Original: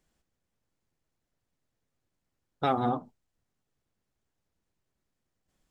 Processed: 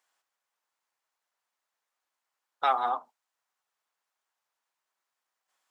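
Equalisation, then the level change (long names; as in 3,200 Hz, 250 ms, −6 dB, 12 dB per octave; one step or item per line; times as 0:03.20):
high-pass with resonance 970 Hz, resonance Q 1.7
+1.5 dB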